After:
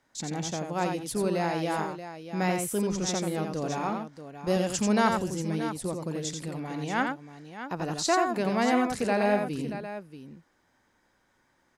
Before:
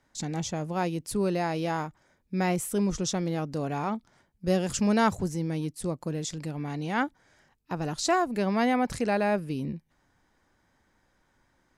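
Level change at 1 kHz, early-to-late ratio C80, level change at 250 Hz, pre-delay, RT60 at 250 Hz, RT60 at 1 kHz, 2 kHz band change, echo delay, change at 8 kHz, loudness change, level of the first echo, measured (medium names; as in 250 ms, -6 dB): +1.0 dB, no reverb, -0.5 dB, no reverb, no reverb, no reverb, +1.5 dB, 87 ms, +1.5 dB, 0.0 dB, -5.0 dB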